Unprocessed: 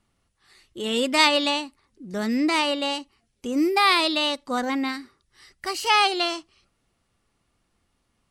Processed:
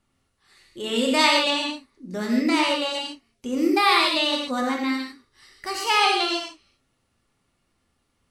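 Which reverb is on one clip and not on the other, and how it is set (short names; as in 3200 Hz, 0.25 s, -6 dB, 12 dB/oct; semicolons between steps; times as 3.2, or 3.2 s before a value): non-linear reverb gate 0.18 s flat, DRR -0.5 dB; gain -2.5 dB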